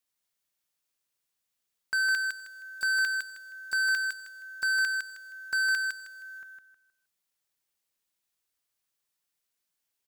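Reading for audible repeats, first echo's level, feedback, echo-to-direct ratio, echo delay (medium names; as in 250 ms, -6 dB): 3, -4.0 dB, 29%, -3.5 dB, 157 ms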